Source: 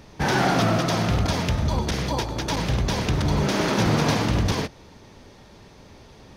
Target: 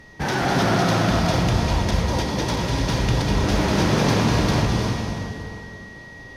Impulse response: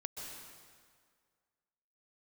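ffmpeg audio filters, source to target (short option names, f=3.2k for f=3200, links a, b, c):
-filter_complex "[0:a]aeval=exprs='val(0)+0.00562*sin(2*PI*1900*n/s)':c=same[a];[1:a]atrim=start_sample=2205,asetrate=28224,aresample=44100[b];[a][b]afir=irnorm=-1:irlink=0"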